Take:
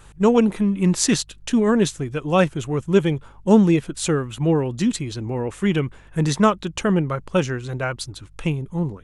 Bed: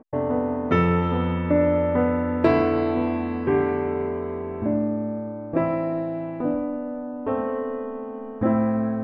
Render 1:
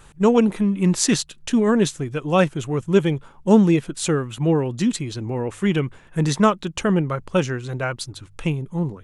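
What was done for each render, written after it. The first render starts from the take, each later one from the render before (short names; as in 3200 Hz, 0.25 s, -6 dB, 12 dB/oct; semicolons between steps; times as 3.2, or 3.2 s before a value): de-hum 50 Hz, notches 2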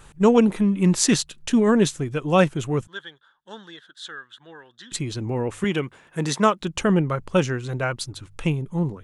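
2.87–4.92 double band-pass 2400 Hz, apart 1.1 oct; 5.64–6.62 HPF 300 Hz 6 dB/oct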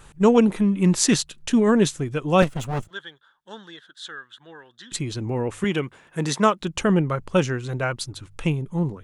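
2.42–2.91 minimum comb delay 1.5 ms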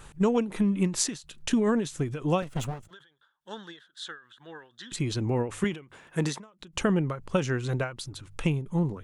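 compressor 5:1, threshold -21 dBFS, peak gain reduction 10 dB; ending taper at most 150 dB/s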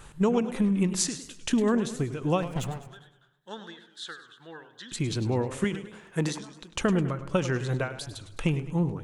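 darkening echo 76 ms, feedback 60%, low-pass 1700 Hz, level -18 dB; warbling echo 0.103 s, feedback 46%, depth 137 cents, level -13 dB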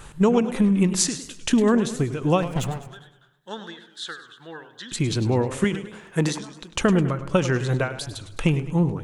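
gain +5.5 dB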